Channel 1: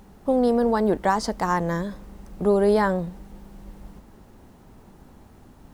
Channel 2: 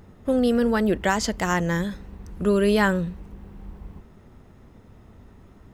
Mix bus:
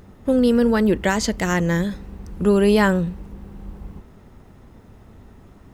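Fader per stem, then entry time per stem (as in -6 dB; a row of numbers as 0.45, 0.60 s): -6.5, +2.5 dB; 0.00, 0.00 s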